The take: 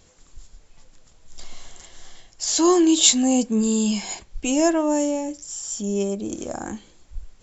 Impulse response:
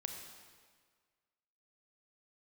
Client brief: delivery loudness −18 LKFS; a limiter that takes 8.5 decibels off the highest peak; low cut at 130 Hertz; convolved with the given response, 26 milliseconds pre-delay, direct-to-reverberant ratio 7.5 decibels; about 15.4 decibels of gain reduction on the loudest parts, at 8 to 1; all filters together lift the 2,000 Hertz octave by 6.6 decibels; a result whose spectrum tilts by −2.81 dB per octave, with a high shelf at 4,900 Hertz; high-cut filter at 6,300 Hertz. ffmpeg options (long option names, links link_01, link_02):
-filter_complex "[0:a]highpass=130,lowpass=6300,equalizer=frequency=2000:width_type=o:gain=7,highshelf=frequency=4900:gain=8.5,acompressor=threshold=-24dB:ratio=8,alimiter=limit=-21dB:level=0:latency=1,asplit=2[link_01][link_02];[1:a]atrim=start_sample=2205,adelay=26[link_03];[link_02][link_03]afir=irnorm=-1:irlink=0,volume=-6dB[link_04];[link_01][link_04]amix=inputs=2:normalize=0,volume=12dB"